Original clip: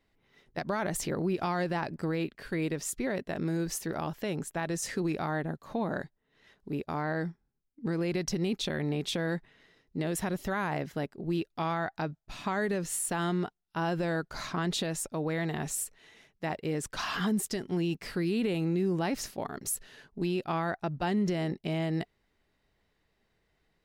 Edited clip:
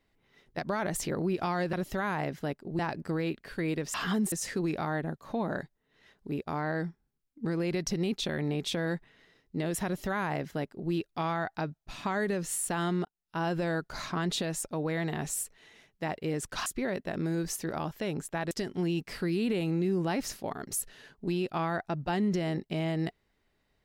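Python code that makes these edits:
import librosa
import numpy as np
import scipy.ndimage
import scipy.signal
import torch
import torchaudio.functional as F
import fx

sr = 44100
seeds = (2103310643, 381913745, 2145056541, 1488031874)

y = fx.edit(x, sr, fx.swap(start_s=2.88, length_s=1.85, other_s=17.07, other_length_s=0.38),
    fx.duplicate(start_s=10.26, length_s=1.06, to_s=1.73),
    fx.fade_in_span(start_s=13.46, length_s=0.46, curve='qsin'), tone=tone)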